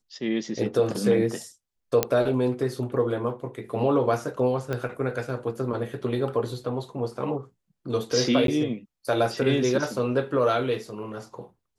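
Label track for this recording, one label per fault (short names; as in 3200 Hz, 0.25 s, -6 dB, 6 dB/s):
2.030000	2.030000	pop -5 dBFS
4.730000	4.730000	pop -16 dBFS
8.470000	8.480000	gap 12 ms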